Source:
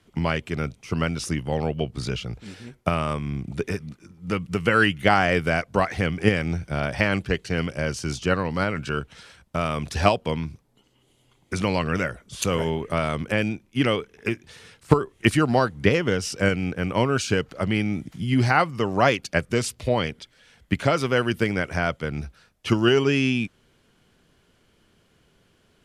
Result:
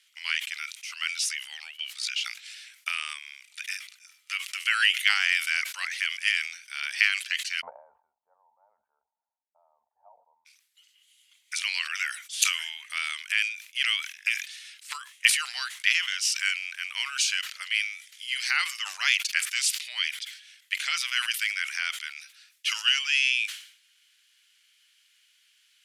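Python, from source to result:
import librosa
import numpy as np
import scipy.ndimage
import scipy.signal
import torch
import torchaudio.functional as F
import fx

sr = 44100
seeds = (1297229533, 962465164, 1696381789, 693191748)

y = fx.cheby_ripple(x, sr, hz=920.0, ripple_db=3, at=(7.6, 10.45), fade=0.02)
y = scipy.signal.sosfilt(scipy.signal.cheby2(4, 80, 350.0, 'highpass', fs=sr, output='sos'), y)
y = fx.sustainer(y, sr, db_per_s=100.0)
y = y * 10.0 ** (5.5 / 20.0)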